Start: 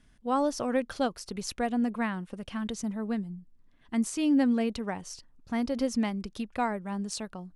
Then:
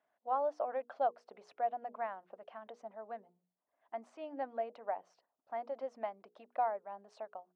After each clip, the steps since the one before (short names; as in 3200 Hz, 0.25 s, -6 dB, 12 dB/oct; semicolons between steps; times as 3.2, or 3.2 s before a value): ladder band-pass 740 Hz, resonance 65%; notches 60/120/180/240/300/360/420/480 Hz; harmonic-percussive split harmonic -4 dB; gain +5.5 dB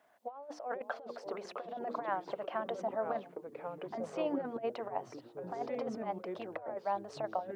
in parallel at -1.5 dB: limiter -33 dBFS, peak gain reduction 11 dB; on the sum: negative-ratio compressor -38 dBFS, ratio -0.5; echoes that change speed 0.427 s, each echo -4 st, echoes 3, each echo -6 dB; gain +2 dB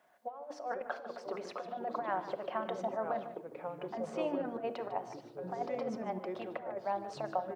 echo 0.15 s -13.5 dB; reverb RT60 0.85 s, pre-delay 5 ms, DRR 9 dB